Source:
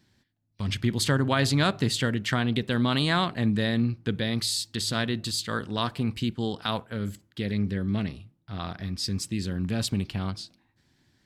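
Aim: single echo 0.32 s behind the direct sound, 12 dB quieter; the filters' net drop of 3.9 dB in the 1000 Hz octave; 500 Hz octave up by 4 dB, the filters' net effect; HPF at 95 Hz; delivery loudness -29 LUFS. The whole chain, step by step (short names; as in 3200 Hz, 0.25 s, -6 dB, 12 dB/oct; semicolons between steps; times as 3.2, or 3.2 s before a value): HPF 95 Hz; bell 500 Hz +7 dB; bell 1000 Hz -8 dB; echo 0.32 s -12 dB; gain -2 dB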